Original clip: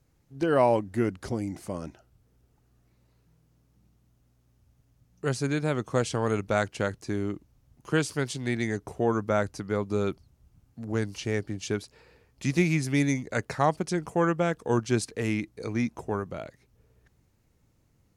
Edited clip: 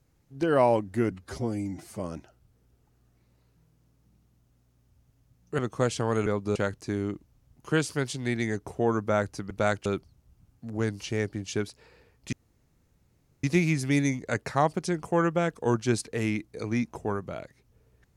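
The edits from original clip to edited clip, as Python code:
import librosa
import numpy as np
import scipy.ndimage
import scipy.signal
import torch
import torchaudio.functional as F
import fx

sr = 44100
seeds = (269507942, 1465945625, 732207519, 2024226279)

y = fx.edit(x, sr, fx.stretch_span(start_s=1.11, length_s=0.59, factor=1.5),
    fx.cut(start_s=5.29, length_s=0.44),
    fx.swap(start_s=6.41, length_s=0.35, other_s=9.71, other_length_s=0.29),
    fx.insert_room_tone(at_s=12.47, length_s=1.11), tone=tone)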